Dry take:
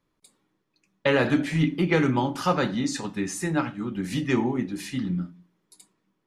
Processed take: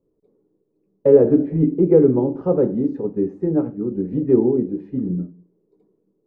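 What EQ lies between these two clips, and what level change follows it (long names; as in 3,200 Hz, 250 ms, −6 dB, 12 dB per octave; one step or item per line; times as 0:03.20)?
low-pass with resonance 440 Hz, resonance Q 4.9
+2.0 dB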